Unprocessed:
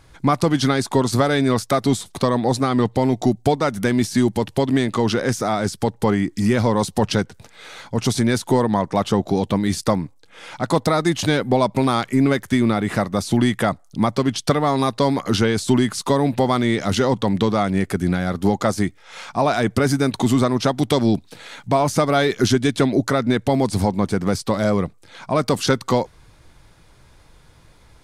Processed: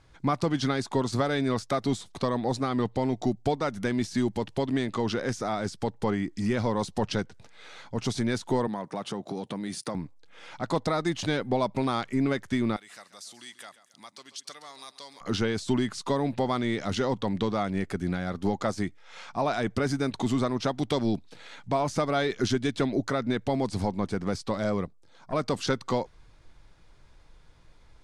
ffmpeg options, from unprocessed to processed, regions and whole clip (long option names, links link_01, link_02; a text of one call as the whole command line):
ffmpeg -i in.wav -filter_complex "[0:a]asettb=1/sr,asplit=3[link_01][link_02][link_03];[link_01]atrim=end=8.674[link_04];[link_02]atrim=start=8.67:end=9.95,asetpts=PTS-STARTPTS,afade=type=in:duration=0.004:curve=qsin,afade=type=out:start_time=1.276:duration=0.004:curve=qsin,equalizer=frequency=9500:width=4.4:gain=11,acompressor=threshold=-19dB:ratio=5:attack=3.2:release=140:knee=1:detection=peak,highpass=frequency=130:width=0.5412,highpass=frequency=130:width=1.3066[link_05];[link_03]atrim=start=9.946[link_06];[link_04][link_05]acrossfade=duration=0.004:curve1=hsin:curve2=qsin[link_07];[link_07][link_06]acrossfade=duration=0.004:curve1=qsin:curve2=hsin,asettb=1/sr,asplit=3[link_08][link_09][link_10];[link_08]atrim=end=12.764[link_11];[link_09]atrim=start=12.76:end=15.21,asetpts=PTS-STARTPTS,afade=type=in:duration=0.004:curve=qsin,afade=type=out:start_time=2.446:duration=0.004:curve=qsin,aderivative,acompressor=mode=upward:threshold=-38dB:ratio=2.5:attack=3.2:release=140:knee=2.83:detection=peak,aecho=1:1:136|272|408:0.178|0.0676|0.0257,atrim=end_sample=108045[link_12];[link_10]atrim=start=15.206[link_13];[link_11][link_12]acrossfade=duration=0.004:curve1=hsin:curve2=qsin[link_14];[link_14][link_13]acrossfade=duration=0.004:curve1=qsin:curve2=hsin,asettb=1/sr,asplit=3[link_15][link_16][link_17];[link_15]atrim=end=24.854[link_18];[link_16]atrim=start=24.85:end=25.33,asetpts=PTS-STARTPTS,afade=type=in:duration=0.004:curve=qsin,afade=type=out:start_time=0.476:duration=0.004:curve=qsin,equalizer=frequency=2300:width_type=o:width=1.4:gain=-9,aeval=exprs='(tanh(7.94*val(0)+0.7)-tanh(0.7))/7.94':channel_layout=same[link_19];[link_17]atrim=start=25.326[link_20];[link_18][link_19]acrossfade=duration=0.004:curve1=hsin:curve2=qsin[link_21];[link_21][link_20]acrossfade=duration=0.004:curve1=qsin:curve2=hsin,lowpass=7200,asubboost=boost=2:cutoff=51,volume=-8.5dB" out.wav